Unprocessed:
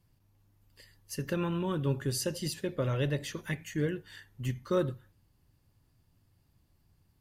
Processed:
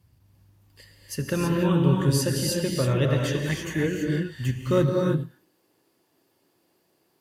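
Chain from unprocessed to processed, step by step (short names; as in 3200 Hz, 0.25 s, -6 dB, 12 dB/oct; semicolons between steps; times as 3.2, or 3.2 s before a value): high-pass sweep 65 Hz -> 390 Hz, 4.56–5.25; non-linear reverb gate 0.35 s rising, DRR 0 dB; gain +5 dB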